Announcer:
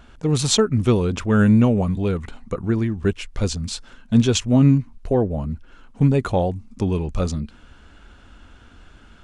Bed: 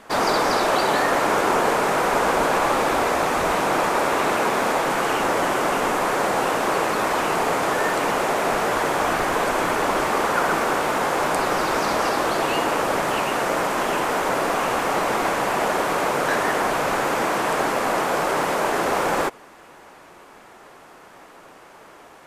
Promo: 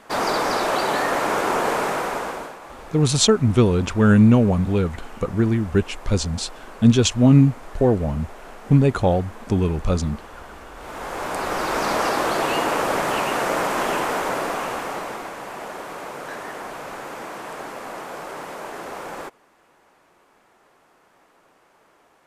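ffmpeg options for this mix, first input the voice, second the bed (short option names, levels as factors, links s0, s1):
-filter_complex "[0:a]adelay=2700,volume=1.19[s0];[1:a]volume=8.41,afade=t=out:st=1.81:d=0.75:silence=0.11885,afade=t=in:st=10.75:d=1.2:silence=0.0944061,afade=t=out:st=13.88:d=1.41:silence=0.251189[s1];[s0][s1]amix=inputs=2:normalize=0"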